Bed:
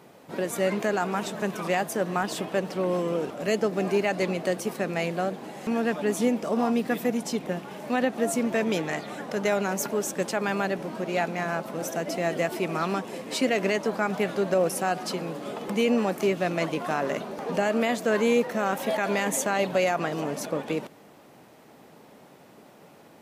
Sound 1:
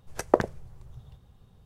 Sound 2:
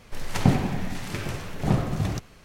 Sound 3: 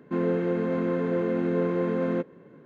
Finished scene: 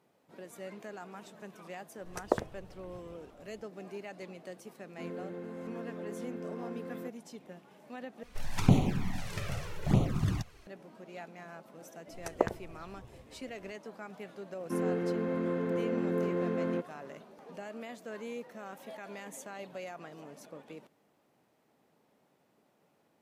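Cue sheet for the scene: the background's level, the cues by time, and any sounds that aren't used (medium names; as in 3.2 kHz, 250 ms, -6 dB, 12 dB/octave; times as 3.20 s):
bed -19 dB
1.98 s: add 1 -8 dB
4.87 s: add 3 -16 dB
8.23 s: replace with 2 -3 dB + touch-sensitive flanger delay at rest 4.4 ms, full sweep at -18 dBFS
12.07 s: add 1 -7.5 dB
14.59 s: add 3 -6 dB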